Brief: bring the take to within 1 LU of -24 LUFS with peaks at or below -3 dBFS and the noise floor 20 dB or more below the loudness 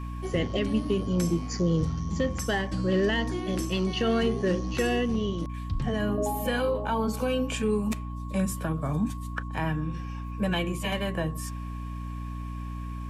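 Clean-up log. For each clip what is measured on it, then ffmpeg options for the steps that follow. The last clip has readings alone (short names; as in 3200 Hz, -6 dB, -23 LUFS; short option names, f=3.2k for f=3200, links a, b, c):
hum 60 Hz; harmonics up to 300 Hz; hum level -33 dBFS; steady tone 1100 Hz; tone level -44 dBFS; loudness -29.0 LUFS; peak -15.5 dBFS; loudness target -24.0 LUFS
-> -af "bandreject=f=60:t=h:w=6,bandreject=f=120:t=h:w=6,bandreject=f=180:t=h:w=6,bandreject=f=240:t=h:w=6,bandreject=f=300:t=h:w=6"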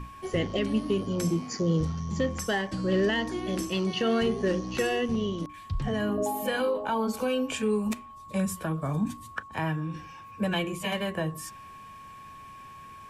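hum none; steady tone 1100 Hz; tone level -44 dBFS
-> -af "bandreject=f=1.1k:w=30"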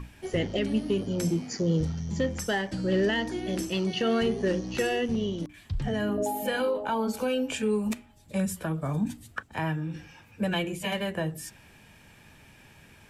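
steady tone none; loudness -29.5 LUFS; peak -16.5 dBFS; loudness target -24.0 LUFS
-> -af "volume=5.5dB"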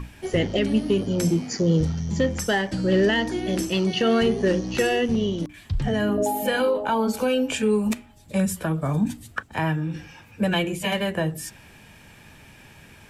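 loudness -24.0 LUFS; peak -11.0 dBFS; noise floor -49 dBFS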